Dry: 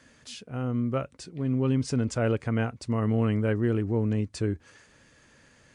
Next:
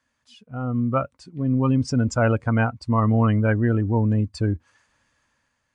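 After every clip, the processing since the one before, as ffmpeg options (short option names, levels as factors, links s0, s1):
-af "afftdn=nr=17:nf=-35,equalizer=f=160:t=o:w=0.67:g=-6,equalizer=f=400:t=o:w=0.67:g=-10,equalizer=f=1000:t=o:w=0.67:g=7,dynaudnorm=f=120:g=11:m=2.51,volume=1.12"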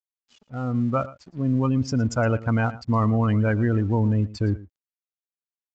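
-af "aresample=16000,aeval=exprs='sgn(val(0))*max(abs(val(0))-0.00316,0)':c=same,aresample=44100,aecho=1:1:114:0.112,alimiter=limit=0.2:level=0:latency=1:release=14"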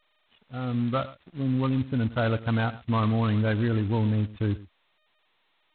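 -filter_complex "[0:a]asplit=2[s0][s1];[s1]acrusher=bits=3:mode=log:mix=0:aa=0.000001,volume=0.355[s2];[s0][s2]amix=inputs=2:normalize=0,volume=0.501" -ar 8000 -c:a adpcm_g726 -b:a 16k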